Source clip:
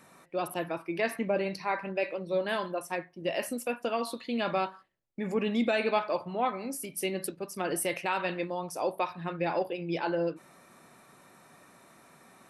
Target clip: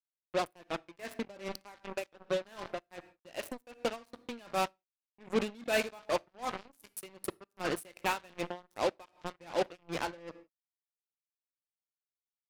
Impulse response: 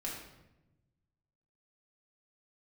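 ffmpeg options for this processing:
-filter_complex "[0:a]acrusher=bits=4:mix=0:aa=0.5,asplit=2[a][b];[1:a]atrim=start_sample=2205,afade=t=out:st=0.23:d=0.01,atrim=end_sample=10584[c];[b][c]afir=irnorm=-1:irlink=0,volume=-21dB[d];[a][d]amix=inputs=2:normalize=0,aeval=exprs='val(0)*pow(10,-25*(0.5-0.5*cos(2*PI*2.6*n/s))/20)':c=same"

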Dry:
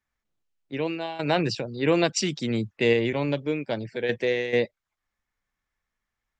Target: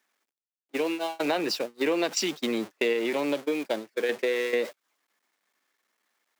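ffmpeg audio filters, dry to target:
-af "aeval=exprs='val(0)+0.5*0.0282*sgn(val(0))':c=same,agate=range=-43dB:threshold=-27dB:ratio=16:detection=peak,highpass=f=260:w=0.5412,highpass=f=260:w=1.3066,acompressor=threshold=-34dB:ratio=3,volume=7dB"

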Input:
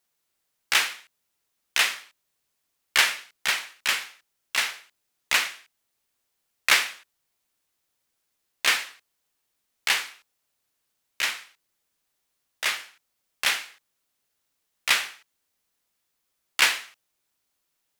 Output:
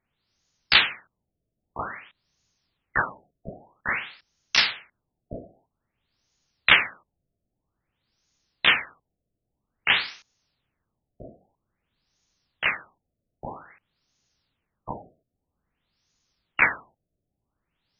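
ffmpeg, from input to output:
-af "bass=f=250:g=14,treble=f=4k:g=11,afftfilt=real='re*lt(b*sr/1024,690*pow(7000/690,0.5+0.5*sin(2*PI*0.51*pts/sr)))':imag='im*lt(b*sr/1024,690*pow(7000/690,0.5+0.5*sin(2*PI*0.51*pts/sr)))':win_size=1024:overlap=0.75,volume=2.5dB"

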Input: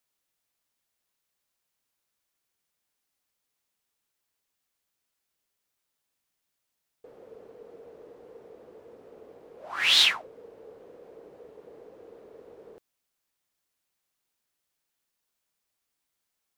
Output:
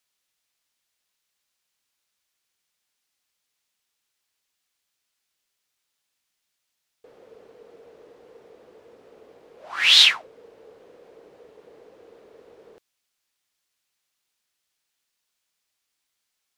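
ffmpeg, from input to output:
-af "equalizer=f=3.9k:w=0.35:g=8.5,volume=-2dB"

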